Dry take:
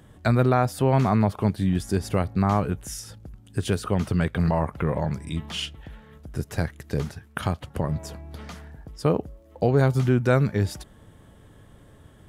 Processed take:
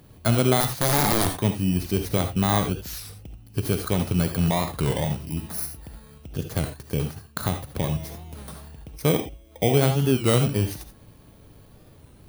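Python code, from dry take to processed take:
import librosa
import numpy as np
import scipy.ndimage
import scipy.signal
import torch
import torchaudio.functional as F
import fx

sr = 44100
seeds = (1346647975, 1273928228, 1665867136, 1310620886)

y = fx.bit_reversed(x, sr, seeds[0], block=16)
y = fx.overflow_wrap(y, sr, gain_db=15.5, at=(0.6, 1.38))
y = fx.rev_gated(y, sr, seeds[1], gate_ms=100, shape='rising', drr_db=6.5)
y = fx.record_warp(y, sr, rpm=33.33, depth_cents=160.0)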